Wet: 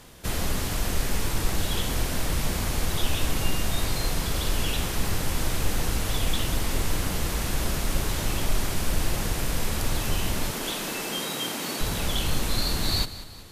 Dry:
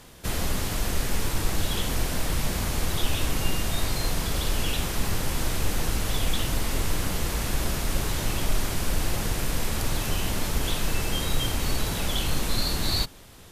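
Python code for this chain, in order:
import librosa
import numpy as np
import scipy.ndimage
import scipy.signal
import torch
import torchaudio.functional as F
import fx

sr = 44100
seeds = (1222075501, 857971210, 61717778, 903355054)

y = fx.highpass(x, sr, hz=190.0, slope=24, at=(10.51, 11.81))
y = fx.echo_feedback(y, sr, ms=189, feedback_pct=48, wet_db=-15.0)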